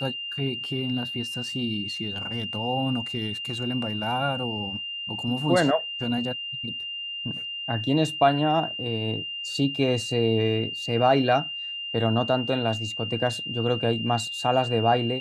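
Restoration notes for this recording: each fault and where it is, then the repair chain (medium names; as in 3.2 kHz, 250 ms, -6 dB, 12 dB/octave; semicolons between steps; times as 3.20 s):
whine 2.8 kHz -31 dBFS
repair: band-stop 2.8 kHz, Q 30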